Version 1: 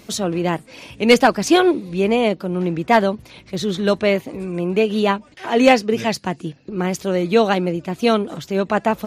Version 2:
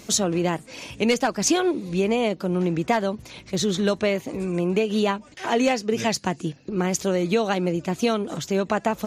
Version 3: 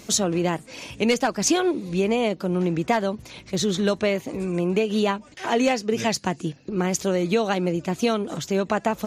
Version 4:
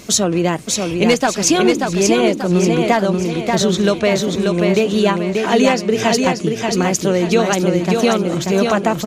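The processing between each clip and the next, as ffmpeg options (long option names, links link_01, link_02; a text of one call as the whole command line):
ffmpeg -i in.wav -af "acompressor=threshold=-18dB:ratio=6,equalizer=frequency=6700:width_type=o:width=0.62:gain=7.5" out.wav
ffmpeg -i in.wav -af anull out.wav
ffmpeg -i in.wav -filter_complex "[0:a]bandreject=frequency=830:width=21,asplit=2[link_01][link_02];[link_02]aecho=0:1:585|1170|1755|2340|2925:0.631|0.271|0.117|0.0502|0.0216[link_03];[link_01][link_03]amix=inputs=2:normalize=0,volume=6.5dB" out.wav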